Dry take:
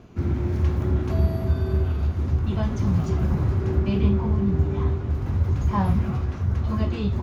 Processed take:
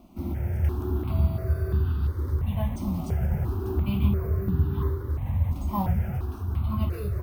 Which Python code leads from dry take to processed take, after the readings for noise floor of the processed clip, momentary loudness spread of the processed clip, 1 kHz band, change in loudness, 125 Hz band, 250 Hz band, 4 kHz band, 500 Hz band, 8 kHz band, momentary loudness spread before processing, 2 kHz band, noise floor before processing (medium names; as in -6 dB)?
-35 dBFS, 5 LU, -3.5 dB, -3.5 dB, -3.5 dB, -5.5 dB, -5.5 dB, -5.5 dB, no reading, 4 LU, -5.5 dB, -31 dBFS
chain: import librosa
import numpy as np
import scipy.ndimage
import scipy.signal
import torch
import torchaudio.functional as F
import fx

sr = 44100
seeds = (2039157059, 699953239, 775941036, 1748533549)

y = np.repeat(scipy.signal.resample_poly(x, 1, 3), 3)[:len(x)]
y = fx.phaser_held(y, sr, hz=2.9, low_hz=440.0, high_hz=2200.0)
y = y * 10.0 ** (-1.5 / 20.0)